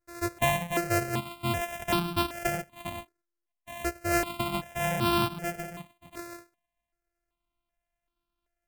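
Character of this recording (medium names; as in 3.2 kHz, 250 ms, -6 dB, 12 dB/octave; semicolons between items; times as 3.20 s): a buzz of ramps at a fixed pitch in blocks of 128 samples; notches that jump at a steady rate 2.6 Hz 850–1900 Hz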